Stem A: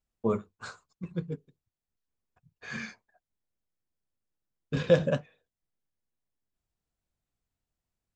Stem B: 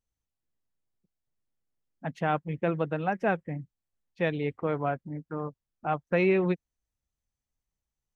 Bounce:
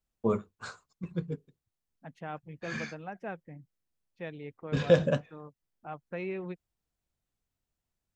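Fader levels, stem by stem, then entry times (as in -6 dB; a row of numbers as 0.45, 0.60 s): 0.0, -12.5 dB; 0.00, 0.00 s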